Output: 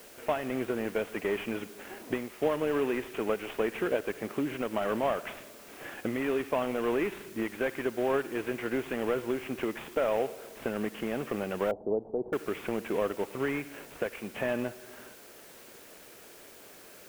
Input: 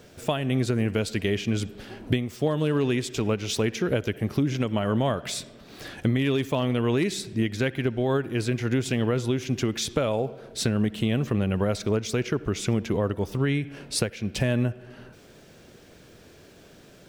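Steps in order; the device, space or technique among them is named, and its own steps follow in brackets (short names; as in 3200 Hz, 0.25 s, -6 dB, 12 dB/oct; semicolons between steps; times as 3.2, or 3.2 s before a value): army field radio (BPF 360–2900 Hz; CVSD 16 kbps; white noise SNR 21 dB); 11.71–12.33 elliptic low-pass 820 Hz, stop band 60 dB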